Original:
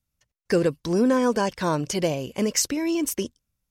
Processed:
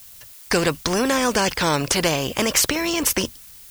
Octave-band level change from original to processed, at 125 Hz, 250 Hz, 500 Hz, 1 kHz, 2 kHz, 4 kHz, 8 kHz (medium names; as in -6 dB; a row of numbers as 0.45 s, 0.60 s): +2.0 dB, -0.5 dB, +1.0 dB, +5.0 dB, +10.0 dB, +10.0 dB, +6.5 dB